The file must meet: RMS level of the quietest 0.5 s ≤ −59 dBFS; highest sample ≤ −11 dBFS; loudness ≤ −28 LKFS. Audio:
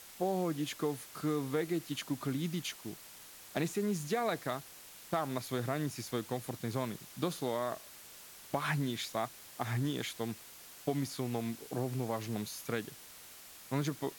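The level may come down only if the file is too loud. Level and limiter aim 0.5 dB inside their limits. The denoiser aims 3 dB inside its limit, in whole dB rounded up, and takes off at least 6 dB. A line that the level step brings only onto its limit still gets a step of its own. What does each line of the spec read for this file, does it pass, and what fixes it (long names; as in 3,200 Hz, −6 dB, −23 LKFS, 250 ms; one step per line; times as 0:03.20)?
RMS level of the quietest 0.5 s −53 dBFS: out of spec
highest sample −19.5 dBFS: in spec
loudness −37.0 LKFS: in spec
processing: broadband denoise 9 dB, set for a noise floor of −53 dBFS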